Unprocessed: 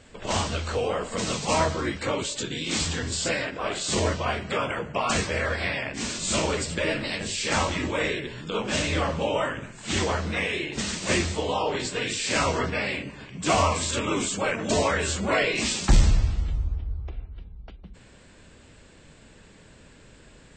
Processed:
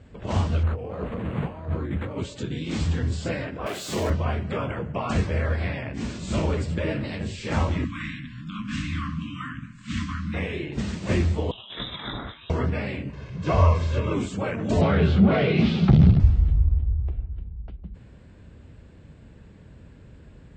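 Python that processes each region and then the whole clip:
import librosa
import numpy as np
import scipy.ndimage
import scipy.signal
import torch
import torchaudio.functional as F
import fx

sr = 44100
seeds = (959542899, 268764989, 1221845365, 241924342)

y = fx.chain(x, sr, fx.over_compress(threshold_db=-32.0, ratio=-1.0),
    fx.resample_linear(factor=8), at=(0.63, 2.18))
y = fx.chain(y, sr, fx.crossing_spikes(level_db=-22.0),
    fx.highpass(hz=420.0, slope=6),
    fx.leveller(passes=1), at=(3.66, 4.1))
y = fx.chain(y, sr, fx.brickwall_bandstop(low_hz=300.0, high_hz=1000.0),
    fx.peak_eq(hz=83.0, db=-10.0, octaves=1.2), at=(7.84, 10.34))
y = fx.chain(y, sr, fx.over_compress(threshold_db=-31.0, ratio=-0.5),
    fx.low_shelf(hz=240.0, db=9.5),
    fx.freq_invert(carrier_hz=3800), at=(11.51, 12.5))
y = fx.chain(y, sr, fx.delta_mod(bps=64000, step_db=-36.5),
    fx.cheby1_lowpass(hz=6200.0, order=3),
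    fx.comb(ms=1.9, depth=0.54), at=(13.13, 14.14))
y = fx.chain(y, sr, fx.leveller(passes=3),
    fx.cabinet(low_hz=120.0, low_slope=12, high_hz=3700.0, hz=(160.0, 300.0, 540.0, 1000.0, 1800.0, 2600.0), db=(8, -7, -6, -10, -9, -5)), at=(14.81, 16.2))
y = scipy.signal.sosfilt(scipy.signal.butter(2, 66.0, 'highpass', fs=sr, output='sos'), y)
y = fx.riaa(y, sr, side='playback')
y = y * 10.0 ** (-4.0 / 20.0)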